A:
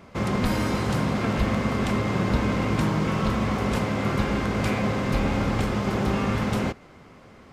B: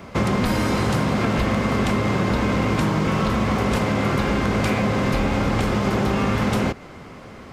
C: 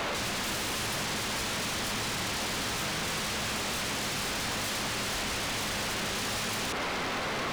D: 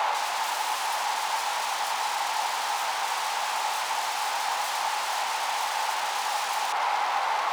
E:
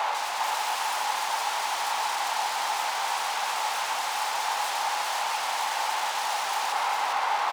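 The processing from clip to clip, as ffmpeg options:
-filter_complex "[0:a]acrossover=split=270|5800[a][b][c];[a]alimiter=limit=-21dB:level=0:latency=1[d];[d][b][c]amix=inputs=3:normalize=0,acompressor=threshold=-26dB:ratio=6,volume=9dB"
-filter_complex "[0:a]asplit=2[a][b];[b]highpass=f=720:p=1,volume=24dB,asoftclip=type=tanh:threshold=-9dB[c];[a][c]amix=inputs=2:normalize=0,lowpass=f=3.2k:p=1,volume=-6dB,alimiter=limit=-17.5dB:level=0:latency=1:release=27,aeval=exprs='0.0422*(abs(mod(val(0)/0.0422+3,4)-2)-1)':c=same"
-af "highpass=f=850:t=q:w=6.5"
-af "aecho=1:1:403:0.631,volume=-1.5dB"

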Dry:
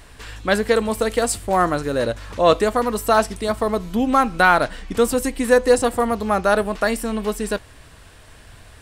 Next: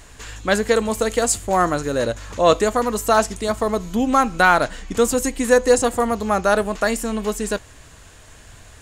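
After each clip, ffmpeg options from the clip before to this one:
-af "equalizer=f=6.8k:w=4.9:g=13"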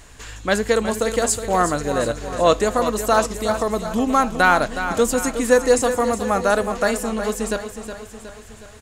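-af "aecho=1:1:366|732|1098|1464|1830|2196:0.316|0.168|0.0888|0.0471|0.025|0.0132,volume=-1dB"

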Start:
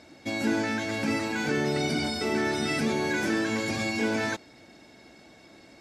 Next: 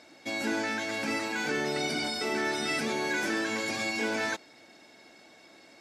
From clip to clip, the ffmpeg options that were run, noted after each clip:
-af "highpass=f=470:p=1"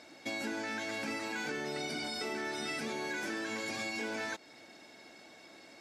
-af "acompressor=threshold=-35dB:ratio=5"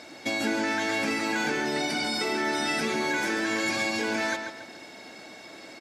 -filter_complex "[0:a]asplit=2[a][b];[b]adelay=140,lowpass=f=3.9k:p=1,volume=-6dB,asplit=2[c][d];[d]adelay=140,lowpass=f=3.9k:p=1,volume=0.38,asplit=2[e][f];[f]adelay=140,lowpass=f=3.9k:p=1,volume=0.38,asplit=2[g][h];[h]adelay=140,lowpass=f=3.9k:p=1,volume=0.38,asplit=2[i][j];[j]adelay=140,lowpass=f=3.9k:p=1,volume=0.38[k];[a][c][e][g][i][k]amix=inputs=6:normalize=0,volume=9dB"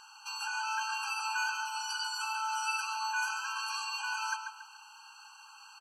-af "afftfilt=real='re*eq(mod(floor(b*sr/1024/810),2),1)':imag='im*eq(mod(floor(b*sr/1024/810),2),1)':win_size=1024:overlap=0.75,volume=-1dB"

